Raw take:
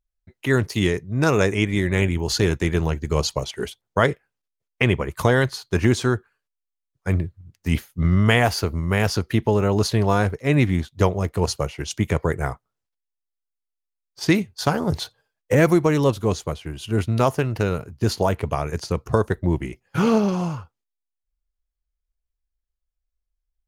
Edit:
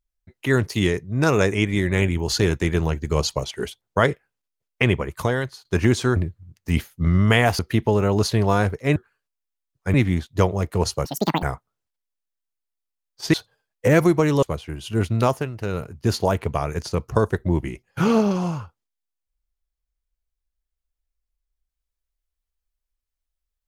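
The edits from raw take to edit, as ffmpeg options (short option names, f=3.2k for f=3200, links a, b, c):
-filter_complex "[0:a]asplit=12[a][b][c][d][e][f][g][h][i][j][k][l];[a]atrim=end=5.65,asetpts=PTS-STARTPTS,afade=t=out:st=4.92:d=0.73:silence=0.223872[m];[b]atrim=start=5.65:end=6.162,asetpts=PTS-STARTPTS,afade=t=in:d=0.004:c=hsin:silence=0.223872[n];[c]atrim=start=7.138:end=8.572[o];[d]atrim=start=9.188:end=10.562[p];[e]atrim=start=6.158:end=7.142[q];[f]atrim=start=10.558:end=11.674[r];[g]atrim=start=11.67:end=12.41,asetpts=PTS-STARTPTS,asetrate=86877,aresample=44100,atrim=end_sample=16565,asetpts=PTS-STARTPTS[s];[h]atrim=start=12.406:end=14.322[t];[i]atrim=start=14.998:end=16.092[u];[j]atrim=start=16.398:end=17.5,asetpts=PTS-STARTPTS,afade=t=out:st=0.822:d=0.28:silence=0.375837[v];[k]atrim=start=17.5:end=17.56,asetpts=PTS-STARTPTS,volume=-8.5dB[w];[l]atrim=start=17.56,asetpts=PTS-STARTPTS,afade=t=in:d=0.28:silence=0.375837[x];[m][n]concat=n=2:v=0:a=1[y];[y][o]acrossfade=d=0.004:c1=hsin:c2=hsin[z];[z][p]acrossfade=d=0.004:c1=hsin:c2=hsin[aa];[aa][q]acrossfade=d=0.004:c1=hsin:c2=hsin[ab];[ab][r]acrossfade=d=0.004:c1=hsin:c2=hsin[ac];[ac][s]acrossfade=d=0.004:c1=hsin:c2=hsin[ad];[ad][t]acrossfade=d=0.004:c1=hsin:c2=hsin[ae];[ae][u]acrossfade=d=0.004:c1=hsin:c2=hsin[af];[v][w][x]concat=n=3:v=0:a=1[ag];[af][ag]acrossfade=d=0.004:c1=hsin:c2=hsin"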